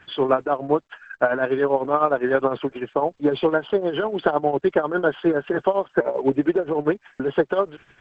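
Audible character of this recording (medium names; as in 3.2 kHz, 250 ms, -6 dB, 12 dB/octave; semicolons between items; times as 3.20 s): tremolo triangle 9.9 Hz, depth 75%; a quantiser's noise floor 12-bit, dither none; Opus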